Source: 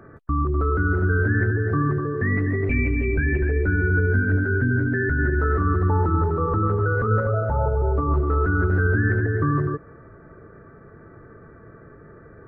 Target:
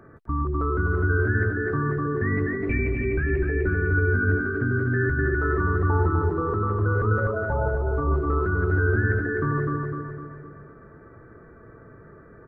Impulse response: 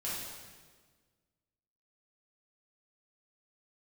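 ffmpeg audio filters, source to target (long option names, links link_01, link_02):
-filter_complex "[0:a]asplit=2[link_01][link_02];[link_02]asetrate=35002,aresample=44100,atempo=1.25992,volume=-17dB[link_03];[link_01][link_03]amix=inputs=2:normalize=0,asplit=2[link_04][link_05];[link_05]aecho=0:1:253|506|759|1012|1265|1518:0.631|0.309|0.151|0.0742|0.0364|0.0178[link_06];[link_04][link_06]amix=inputs=2:normalize=0,volume=-3.5dB"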